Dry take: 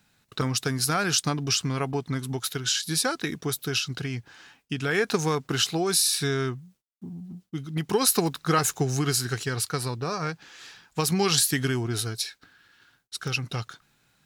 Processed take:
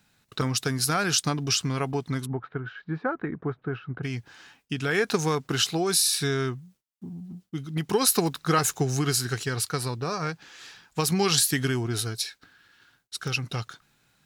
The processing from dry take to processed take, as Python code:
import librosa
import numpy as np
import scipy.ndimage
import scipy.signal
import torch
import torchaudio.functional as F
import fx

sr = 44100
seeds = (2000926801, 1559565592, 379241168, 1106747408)

y = fx.lowpass(x, sr, hz=1600.0, slope=24, at=(2.25, 4.03), fade=0.02)